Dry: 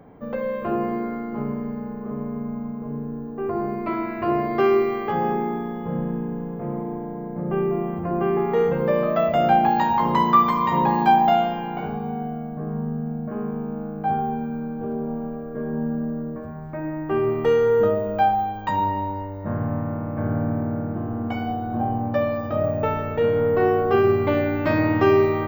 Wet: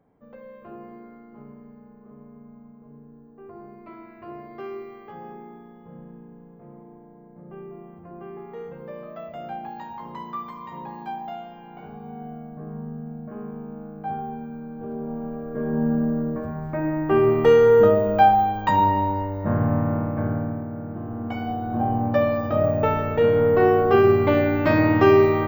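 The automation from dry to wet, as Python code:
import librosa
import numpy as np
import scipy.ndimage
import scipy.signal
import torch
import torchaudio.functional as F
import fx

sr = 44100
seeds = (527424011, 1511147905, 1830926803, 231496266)

y = fx.gain(x, sr, db=fx.line((11.44, -17.0), (12.31, -7.0), (14.64, -7.0), (15.92, 4.0), (19.99, 4.0), (20.68, -7.0), (22.03, 2.0)))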